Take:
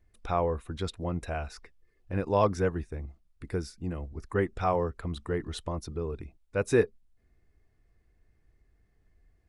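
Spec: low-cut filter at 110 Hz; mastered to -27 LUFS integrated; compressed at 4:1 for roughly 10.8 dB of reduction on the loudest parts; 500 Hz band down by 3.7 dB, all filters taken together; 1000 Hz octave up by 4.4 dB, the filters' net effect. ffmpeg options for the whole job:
-af "highpass=110,equalizer=f=500:t=o:g=-6.5,equalizer=f=1k:t=o:g=7.5,acompressor=threshold=-31dB:ratio=4,volume=11dB"

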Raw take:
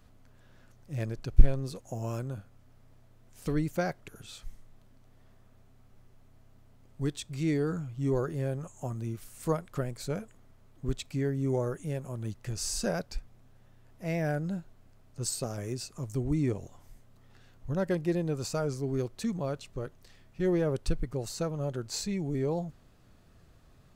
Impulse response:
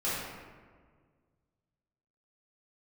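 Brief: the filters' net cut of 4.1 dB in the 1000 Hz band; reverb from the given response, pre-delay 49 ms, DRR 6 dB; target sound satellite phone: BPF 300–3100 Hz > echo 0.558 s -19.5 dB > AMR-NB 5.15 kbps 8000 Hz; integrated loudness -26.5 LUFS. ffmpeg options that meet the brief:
-filter_complex "[0:a]equalizer=f=1k:t=o:g=-6,asplit=2[a][b];[1:a]atrim=start_sample=2205,adelay=49[c];[b][c]afir=irnorm=-1:irlink=0,volume=-14.5dB[d];[a][d]amix=inputs=2:normalize=0,highpass=300,lowpass=3.1k,aecho=1:1:558:0.106,volume=11.5dB" -ar 8000 -c:a libopencore_amrnb -b:a 5150

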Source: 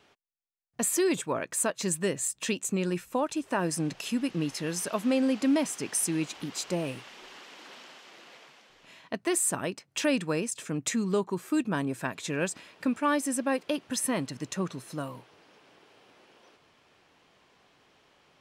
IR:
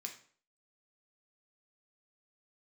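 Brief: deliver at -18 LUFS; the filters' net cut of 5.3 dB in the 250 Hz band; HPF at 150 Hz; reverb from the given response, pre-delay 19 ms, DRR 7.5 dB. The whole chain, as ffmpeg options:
-filter_complex "[0:a]highpass=150,equalizer=f=250:t=o:g=-6,asplit=2[a][b];[1:a]atrim=start_sample=2205,adelay=19[c];[b][c]afir=irnorm=-1:irlink=0,volume=-4.5dB[d];[a][d]amix=inputs=2:normalize=0,volume=13dB"

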